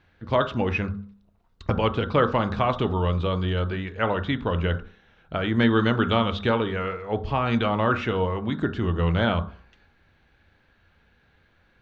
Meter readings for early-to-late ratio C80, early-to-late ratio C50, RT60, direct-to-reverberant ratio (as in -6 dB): 19.0 dB, 14.0 dB, 0.50 s, 8.0 dB